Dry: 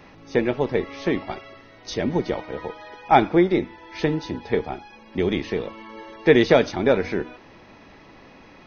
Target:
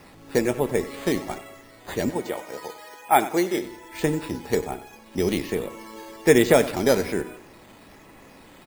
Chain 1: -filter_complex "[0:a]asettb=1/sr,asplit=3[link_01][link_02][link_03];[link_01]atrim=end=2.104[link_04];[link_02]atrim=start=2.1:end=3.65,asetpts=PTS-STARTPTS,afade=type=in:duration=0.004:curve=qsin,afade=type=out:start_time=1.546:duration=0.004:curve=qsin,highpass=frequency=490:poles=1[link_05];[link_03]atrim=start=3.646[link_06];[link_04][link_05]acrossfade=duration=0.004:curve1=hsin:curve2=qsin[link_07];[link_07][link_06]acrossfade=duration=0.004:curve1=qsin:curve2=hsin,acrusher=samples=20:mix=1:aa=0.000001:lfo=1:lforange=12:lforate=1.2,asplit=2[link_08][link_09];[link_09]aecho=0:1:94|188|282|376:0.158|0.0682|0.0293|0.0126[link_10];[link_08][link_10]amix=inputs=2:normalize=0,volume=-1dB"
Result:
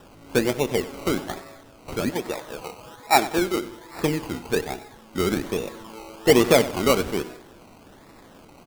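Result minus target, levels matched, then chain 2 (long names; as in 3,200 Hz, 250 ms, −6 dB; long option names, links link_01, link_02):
sample-and-hold swept by an LFO: distortion +11 dB
-filter_complex "[0:a]asettb=1/sr,asplit=3[link_01][link_02][link_03];[link_01]atrim=end=2.104[link_04];[link_02]atrim=start=2.1:end=3.65,asetpts=PTS-STARTPTS,afade=type=in:duration=0.004:curve=qsin,afade=type=out:start_time=1.546:duration=0.004:curve=qsin,highpass=frequency=490:poles=1[link_05];[link_03]atrim=start=3.646[link_06];[link_04][link_05]acrossfade=duration=0.004:curve1=hsin:curve2=qsin[link_07];[link_07][link_06]acrossfade=duration=0.004:curve1=qsin:curve2=hsin,acrusher=samples=6:mix=1:aa=0.000001:lfo=1:lforange=3.6:lforate=1.2,asplit=2[link_08][link_09];[link_09]aecho=0:1:94|188|282|376:0.158|0.0682|0.0293|0.0126[link_10];[link_08][link_10]amix=inputs=2:normalize=0,volume=-1dB"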